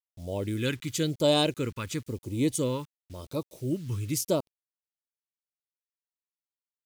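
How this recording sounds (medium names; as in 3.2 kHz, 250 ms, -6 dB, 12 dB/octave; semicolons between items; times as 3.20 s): a quantiser's noise floor 10-bit, dither none; phasing stages 2, 0.96 Hz, lowest notch 640–1500 Hz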